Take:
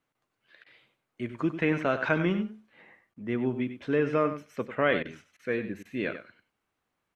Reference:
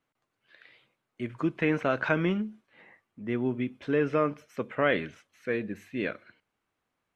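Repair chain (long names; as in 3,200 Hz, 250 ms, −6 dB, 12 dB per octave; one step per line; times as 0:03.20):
repair the gap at 0:00.64/0:03.14/0:05.03/0:05.37/0:05.83, 21 ms
echo removal 96 ms −11 dB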